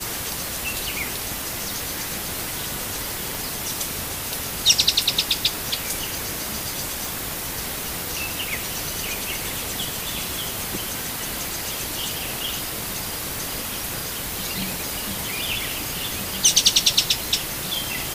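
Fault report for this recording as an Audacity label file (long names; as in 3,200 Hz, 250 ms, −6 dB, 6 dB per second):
3.350000	3.350000	click
7.050000	7.050000	click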